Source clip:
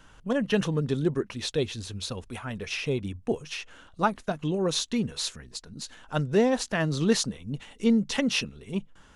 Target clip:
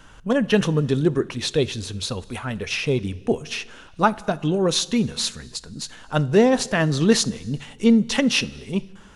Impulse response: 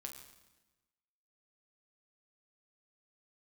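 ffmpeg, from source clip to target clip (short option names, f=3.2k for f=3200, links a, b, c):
-filter_complex "[0:a]asplit=2[a][b];[1:a]atrim=start_sample=2205,afade=t=out:st=0.39:d=0.01,atrim=end_sample=17640,asetrate=28224,aresample=44100[c];[b][c]afir=irnorm=-1:irlink=0,volume=-12dB[d];[a][d]amix=inputs=2:normalize=0,volume=5dB"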